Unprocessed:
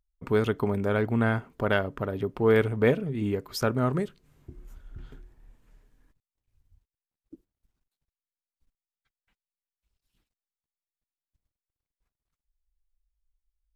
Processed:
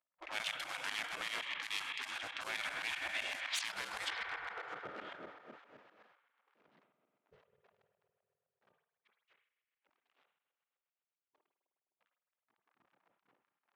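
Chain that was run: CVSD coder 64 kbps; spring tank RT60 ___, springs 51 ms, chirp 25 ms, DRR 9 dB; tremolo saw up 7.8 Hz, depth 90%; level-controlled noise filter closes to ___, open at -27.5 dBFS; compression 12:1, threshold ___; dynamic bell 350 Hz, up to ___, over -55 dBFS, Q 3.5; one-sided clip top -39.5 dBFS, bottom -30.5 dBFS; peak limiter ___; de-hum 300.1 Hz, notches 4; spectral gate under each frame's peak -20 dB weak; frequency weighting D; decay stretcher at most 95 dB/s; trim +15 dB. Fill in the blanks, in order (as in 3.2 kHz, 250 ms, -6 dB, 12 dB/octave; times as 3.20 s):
3.3 s, 960 Hz, -40 dBFS, +3 dB, -37 dBFS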